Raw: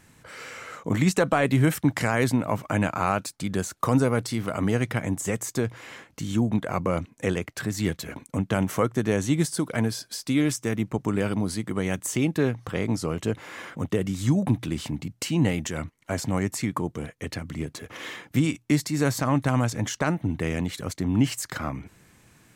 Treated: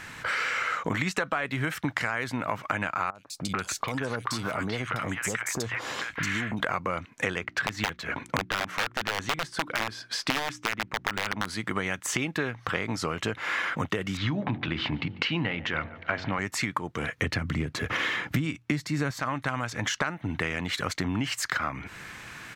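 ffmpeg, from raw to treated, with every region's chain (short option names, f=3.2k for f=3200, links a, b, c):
-filter_complex "[0:a]asettb=1/sr,asplit=3[a][b][c];[a]atrim=end=3.104[d];[b]atrim=start=3.1:end=6.6,asetpts=PTS-STARTPTS,afade=t=in:d=0.004:c=qsin,afade=t=out:st=3.496:d=0.004:c=qsin,acompressor=threshold=-35dB:ratio=4:attack=3.2:release=140:knee=1:detection=peak,acrossover=split=1100|3400[e][f][g];[g]adelay=50[h];[f]adelay=440[i];[e][i][h]amix=inputs=3:normalize=0,atrim=end_sample=154350[j];[c]atrim=start=6.596[k];[d][j]acrossfade=d=0.004:c1=hsin:c2=qsin[l];[l][k]acrossfade=d=0.004:c1=qsin:c2=hsin,asettb=1/sr,asplit=3[m][n][o];[m]atrim=end=7.414[p];[n]atrim=start=7.41:end=11.47,asetpts=PTS-STARTPTS,afade=t=in:d=0.004:c=qsin,afade=t=out:st=4.056:d=0.004:c=qsin,lowpass=f=3.2k:p=1,aeval=exprs='(mod(7.08*val(0)+1,2)-1)/7.08':c=same,bandreject=f=60:t=h:w=6,bandreject=f=120:t=h:w=6,bandreject=f=180:t=h:w=6,bandreject=f=240:t=h:w=6,bandreject=f=300:t=h:w=6,bandreject=f=360:t=h:w=6[q];[o]atrim=start=11.466[r];[p][q]acrossfade=d=0.004:c1=hsin:c2=qsin[s];[s][r]acrossfade=d=0.004:c1=qsin:c2=hsin,asettb=1/sr,asplit=3[t][u][v];[t]atrim=end=14.174[w];[u]atrim=start=14.17:end=16.39,asetpts=PTS-STARTPTS,afade=t=in:d=0.004:c=qsin,afade=t=out:st=2.216:d=0.004:c=qsin,lowpass=f=3.9k:w=0.5412,lowpass=f=3.9k:w=1.3066,bandreject=f=46.25:t=h:w=4,bandreject=f=92.5:t=h:w=4,bandreject=f=138.75:t=h:w=4,bandreject=f=185:t=h:w=4,bandreject=f=231.25:t=h:w=4,bandreject=f=277.5:t=h:w=4,bandreject=f=323.75:t=h:w=4,bandreject=f=370:t=h:w=4,bandreject=f=416.25:t=h:w=4,bandreject=f=462.5:t=h:w=4,bandreject=f=508.75:t=h:w=4,bandreject=f=555:t=h:w=4,bandreject=f=601.25:t=h:w=4,bandreject=f=647.5:t=h:w=4,bandreject=f=693.75:t=h:w=4,bandreject=f=740:t=h:w=4,bandreject=f=786.25:t=h:w=4,bandreject=f=832.5:t=h:w=4,bandreject=f=878.75:t=h:w=4,bandreject=f=925:t=h:w=4,asplit=2[x][y];[y]adelay=145,lowpass=f=2.6k:p=1,volume=-22dB,asplit=2[z][aa];[aa]adelay=145,lowpass=f=2.6k:p=1,volume=0.36,asplit=2[ab][ac];[ac]adelay=145,lowpass=f=2.6k:p=1,volume=0.36[ad];[x][z][ab][ad]amix=inputs=4:normalize=0,atrim=end_sample=97902[ae];[v]atrim=start=16.386[af];[w][ae]acrossfade=d=0.004:c1=hsin:c2=qsin[ag];[ag][af]acrossfade=d=0.004:c1=qsin:c2=hsin,asettb=1/sr,asplit=3[ah][ai][aj];[ah]atrim=end=17.124[ak];[ai]atrim=start=17.12:end=19.11,asetpts=PTS-STARTPTS,afade=t=in:d=0.004:c=qsin,afade=t=out:st=1.986:d=0.004:c=qsin,highpass=45,lowshelf=f=340:g=12[al];[aj]atrim=start=19.106[am];[ak][al]acrossfade=d=0.004:c1=hsin:c2=qsin[an];[an][am]acrossfade=d=0.004:c1=qsin:c2=hsin,firequalizer=gain_entry='entry(230,0);entry(1400,14);entry(8900,-1)':delay=0.05:min_phase=1,acompressor=threshold=-32dB:ratio=10,volume=6.5dB"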